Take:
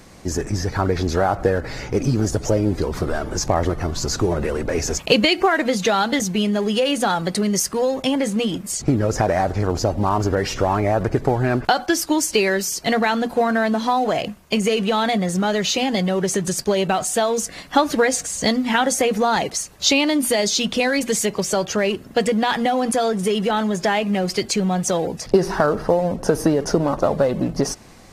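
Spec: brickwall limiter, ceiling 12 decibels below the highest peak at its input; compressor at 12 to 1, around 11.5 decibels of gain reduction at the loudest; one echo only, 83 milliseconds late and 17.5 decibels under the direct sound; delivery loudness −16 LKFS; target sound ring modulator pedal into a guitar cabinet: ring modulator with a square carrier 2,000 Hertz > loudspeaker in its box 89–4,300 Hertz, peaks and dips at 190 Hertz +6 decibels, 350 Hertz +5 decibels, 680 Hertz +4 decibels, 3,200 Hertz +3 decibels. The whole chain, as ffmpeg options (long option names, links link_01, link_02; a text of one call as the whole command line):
ffmpeg -i in.wav -af "acompressor=threshold=-23dB:ratio=12,alimiter=limit=-21dB:level=0:latency=1,aecho=1:1:83:0.133,aeval=exprs='val(0)*sgn(sin(2*PI*2000*n/s))':channel_layout=same,highpass=89,equalizer=frequency=190:width_type=q:width=4:gain=6,equalizer=frequency=350:width_type=q:width=4:gain=5,equalizer=frequency=680:width_type=q:width=4:gain=4,equalizer=frequency=3200:width_type=q:width=4:gain=3,lowpass=frequency=4300:width=0.5412,lowpass=frequency=4300:width=1.3066,volume=12dB" out.wav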